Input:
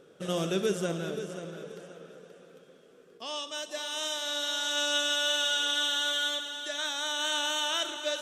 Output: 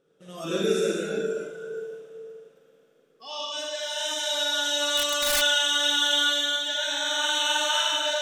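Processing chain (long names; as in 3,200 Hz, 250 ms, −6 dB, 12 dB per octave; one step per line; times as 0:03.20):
four-comb reverb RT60 2.6 s, DRR −4.5 dB
0:04.97–0:05.42: wrap-around overflow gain 16 dB
noise reduction from a noise print of the clip's start 14 dB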